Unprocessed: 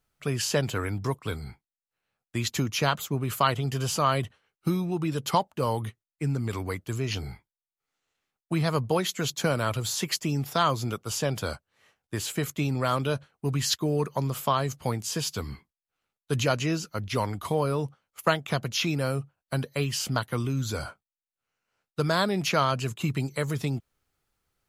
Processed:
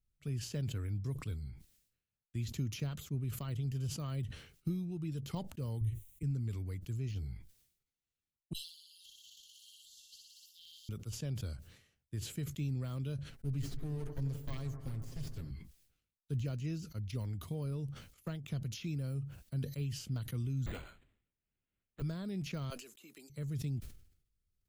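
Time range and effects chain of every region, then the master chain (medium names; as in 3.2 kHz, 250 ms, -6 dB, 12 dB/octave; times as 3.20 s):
5.81–6.23 s: tone controls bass +11 dB, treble +10 dB + static phaser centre 1 kHz, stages 8
8.53–10.89 s: brick-wall FIR high-pass 2.7 kHz + peaking EQ 10 kHz -3.5 dB 1.5 oct + flutter echo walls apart 10.4 m, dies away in 1.4 s
13.30–15.51 s: comb filter that takes the minimum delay 7.4 ms + bucket-brigade echo 86 ms, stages 1024, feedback 84%, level -13 dB
20.66–22.02 s: high-pass 140 Hz + tilt EQ +4 dB/octave + decimation joined by straight lines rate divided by 8×
22.70–23.30 s: Bessel high-pass 510 Hz, order 6 + treble shelf 7.7 kHz +11 dB
whole clip: de-esser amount 100%; amplifier tone stack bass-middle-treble 10-0-1; decay stretcher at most 90 dB/s; trim +6 dB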